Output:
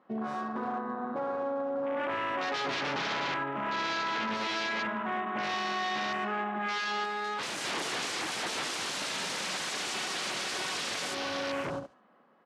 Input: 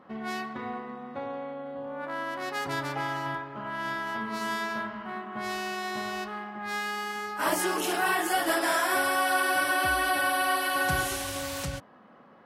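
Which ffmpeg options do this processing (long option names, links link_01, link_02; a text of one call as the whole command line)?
ffmpeg -i in.wav -filter_complex "[0:a]lowshelf=frequency=270:gain=-2.5,aecho=1:1:72|144|216:0.282|0.0705|0.0176,aeval=exprs='0.0251*(abs(mod(val(0)/0.0251+3,4)-2)-1)':channel_layout=same,dynaudnorm=framelen=250:gausssize=11:maxgain=7dB,afwtdn=0.0141,alimiter=level_in=9.5dB:limit=-24dB:level=0:latency=1:release=165,volume=-9.5dB,asettb=1/sr,asplit=3[link_01][link_02][link_03];[link_01]atrim=end=7.044[link_04];[link_02]atrim=start=7.04:end=7.58,asetpts=PTS-STARTPTS,afade=type=in:duration=0.004:curve=qsin,afade=type=out:start_time=0.536:duration=0.004:curve=qsin,asoftclip=type=hard:threshold=-39.5dB[link_05];[link_03]atrim=start=7.576[link_06];[link_04][link_05]acrossfade=duration=0.004:curve1=hsin:curve2=qsin[link_07];[link_07][link_06]acrossfade=duration=0.004:curve1=qsin:curve2=hsin,highpass=180,lowpass=7000,volume=7dB" out.wav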